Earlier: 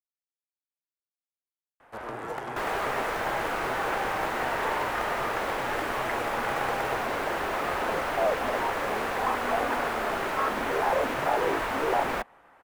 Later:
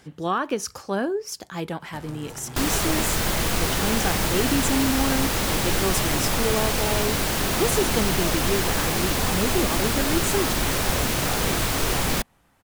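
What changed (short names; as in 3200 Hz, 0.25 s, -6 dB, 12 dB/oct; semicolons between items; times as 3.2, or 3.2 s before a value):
speech: unmuted; first sound -10.5 dB; master: remove three-band isolator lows -20 dB, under 380 Hz, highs -20 dB, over 2200 Hz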